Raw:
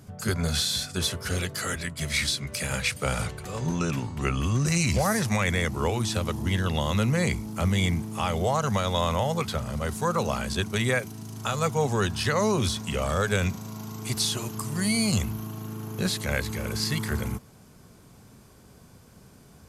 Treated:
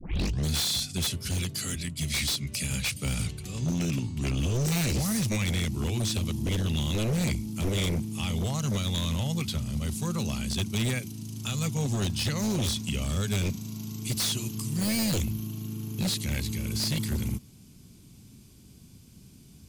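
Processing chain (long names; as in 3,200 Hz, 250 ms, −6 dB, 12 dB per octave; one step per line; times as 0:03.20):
turntable start at the beginning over 0.49 s
flat-topped bell 900 Hz −14.5 dB 2.4 octaves
wave folding −23 dBFS
level +1 dB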